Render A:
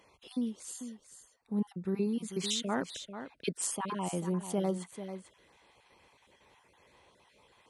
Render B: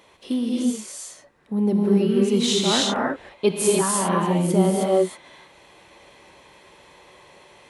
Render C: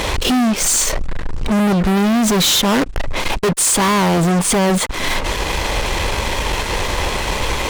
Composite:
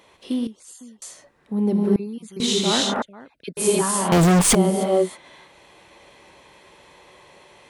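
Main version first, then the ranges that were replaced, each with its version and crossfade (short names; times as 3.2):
B
0.47–1.02 from A
1.96–2.4 from A
3.02–3.57 from A
4.12–4.55 from C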